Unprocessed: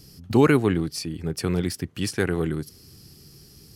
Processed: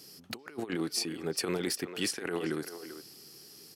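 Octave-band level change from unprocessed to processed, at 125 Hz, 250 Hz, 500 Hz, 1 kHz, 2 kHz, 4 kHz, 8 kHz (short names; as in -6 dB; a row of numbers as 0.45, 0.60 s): -18.5, -12.0, -11.0, -12.5, -8.0, -0.5, -0.5 dB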